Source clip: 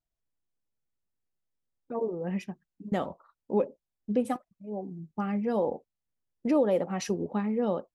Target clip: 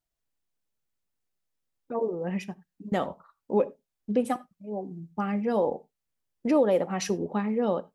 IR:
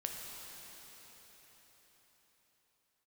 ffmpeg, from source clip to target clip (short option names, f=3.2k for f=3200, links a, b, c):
-filter_complex "[0:a]lowshelf=f=410:g=-4,asplit=2[a][b];[1:a]atrim=start_sample=2205,afade=t=out:st=0.15:d=0.01,atrim=end_sample=7056[c];[b][c]afir=irnorm=-1:irlink=0,volume=-9dB[d];[a][d]amix=inputs=2:normalize=0,volume=2dB"